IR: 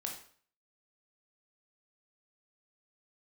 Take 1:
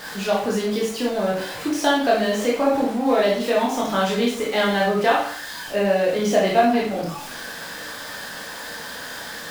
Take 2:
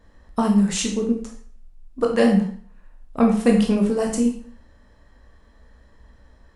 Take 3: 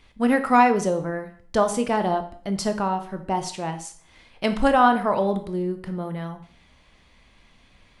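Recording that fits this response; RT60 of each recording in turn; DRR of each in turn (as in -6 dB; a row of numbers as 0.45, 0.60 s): 2; 0.50, 0.50, 0.50 s; -4.5, 0.5, 7.5 dB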